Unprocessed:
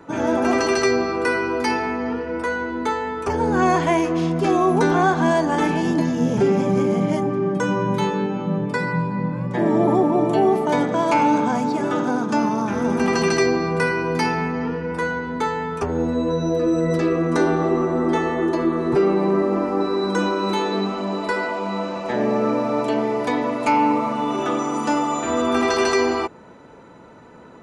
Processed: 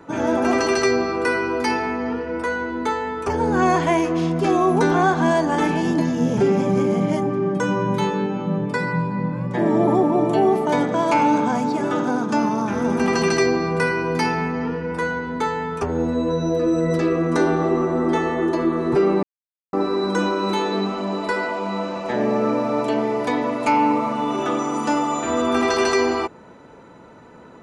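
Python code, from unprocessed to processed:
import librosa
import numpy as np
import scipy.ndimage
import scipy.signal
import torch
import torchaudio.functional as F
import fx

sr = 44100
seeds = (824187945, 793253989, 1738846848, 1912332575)

y = fx.edit(x, sr, fx.silence(start_s=19.23, length_s=0.5), tone=tone)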